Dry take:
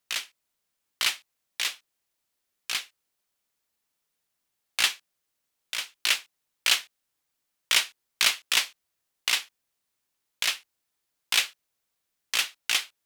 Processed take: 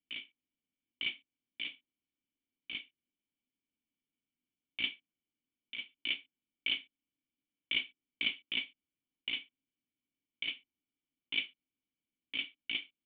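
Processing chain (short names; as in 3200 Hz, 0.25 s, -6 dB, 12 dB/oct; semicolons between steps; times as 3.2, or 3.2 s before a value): vocal tract filter i; gain +5.5 dB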